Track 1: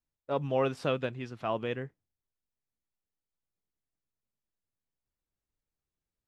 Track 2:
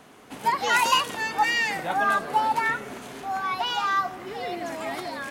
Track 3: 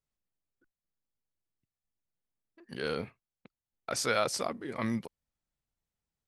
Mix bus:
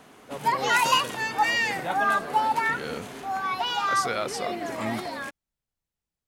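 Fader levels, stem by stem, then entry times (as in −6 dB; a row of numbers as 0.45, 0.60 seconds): −7.5, −0.5, −0.5 decibels; 0.00, 0.00, 0.00 seconds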